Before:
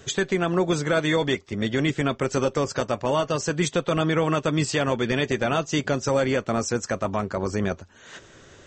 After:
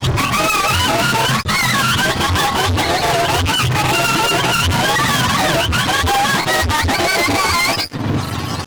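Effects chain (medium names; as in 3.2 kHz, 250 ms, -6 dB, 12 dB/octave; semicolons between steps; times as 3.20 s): spectrum inverted on a logarithmic axis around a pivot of 660 Hz; peaking EQ 200 Hz -7.5 dB 2.8 oct; fuzz box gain 51 dB, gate -59 dBFS; granulator, spray 22 ms, pitch spread up and down by 0 st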